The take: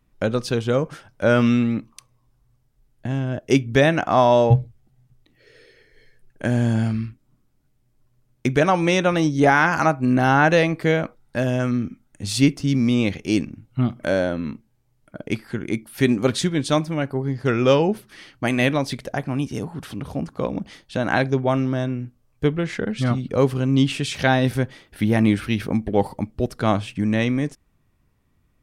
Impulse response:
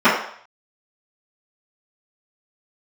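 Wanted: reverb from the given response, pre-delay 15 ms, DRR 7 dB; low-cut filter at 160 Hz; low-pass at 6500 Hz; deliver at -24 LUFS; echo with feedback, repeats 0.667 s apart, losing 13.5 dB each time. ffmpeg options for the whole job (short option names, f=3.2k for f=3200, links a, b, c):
-filter_complex "[0:a]highpass=160,lowpass=6.5k,aecho=1:1:667|1334:0.211|0.0444,asplit=2[a][b];[1:a]atrim=start_sample=2205,adelay=15[c];[b][c]afir=irnorm=-1:irlink=0,volume=-33.5dB[d];[a][d]amix=inputs=2:normalize=0,volume=-3dB"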